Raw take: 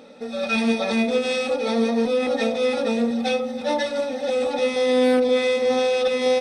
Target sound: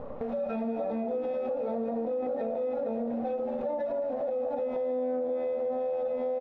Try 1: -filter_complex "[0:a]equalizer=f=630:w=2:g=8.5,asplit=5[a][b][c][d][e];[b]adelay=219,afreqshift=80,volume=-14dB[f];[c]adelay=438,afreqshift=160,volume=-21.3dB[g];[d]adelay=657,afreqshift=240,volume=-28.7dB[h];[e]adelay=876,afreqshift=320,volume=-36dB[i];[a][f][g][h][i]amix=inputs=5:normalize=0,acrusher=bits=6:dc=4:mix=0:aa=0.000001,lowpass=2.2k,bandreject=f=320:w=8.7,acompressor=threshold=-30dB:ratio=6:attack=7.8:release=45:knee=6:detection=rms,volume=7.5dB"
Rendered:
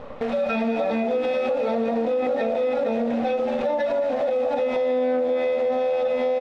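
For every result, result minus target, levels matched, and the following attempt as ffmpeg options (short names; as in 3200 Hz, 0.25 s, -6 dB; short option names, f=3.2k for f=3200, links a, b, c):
2000 Hz band +11.0 dB; compressor: peak gain reduction -7.5 dB
-filter_complex "[0:a]equalizer=f=630:w=2:g=8.5,asplit=5[a][b][c][d][e];[b]adelay=219,afreqshift=80,volume=-14dB[f];[c]adelay=438,afreqshift=160,volume=-21.3dB[g];[d]adelay=657,afreqshift=240,volume=-28.7dB[h];[e]adelay=876,afreqshift=320,volume=-36dB[i];[a][f][g][h][i]amix=inputs=5:normalize=0,acrusher=bits=6:dc=4:mix=0:aa=0.000001,lowpass=880,bandreject=f=320:w=8.7,acompressor=threshold=-30dB:ratio=6:attack=7.8:release=45:knee=6:detection=rms,volume=7.5dB"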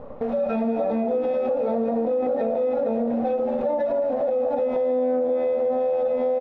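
compressor: peak gain reduction -8 dB
-filter_complex "[0:a]equalizer=f=630:w=2:g=8.5,asplit=5[a][b][c][d][e];[b]adelay=219,afreqshift=80,volume=-14dB[f];[c]adelay=438,afreqshift=160,volume=-21.3dB[g];[d]adelay=657,afreqshift=240,volume=-28.7dB[h];[e]adelay=876,afreqshift=320,volume=-36dB[i];[a][f][g][h][i]amix=inputs=5:normalize=0,acrusher=bits=6:dc=4:mix=0:aa=0.000001,lowpass=880,bandreject=f=320:w=8.7,acompressor=threshold=-39.5dB:ratio=6:attack=7.8:release=45:knee=6:detection=rms,volume=7.5dB"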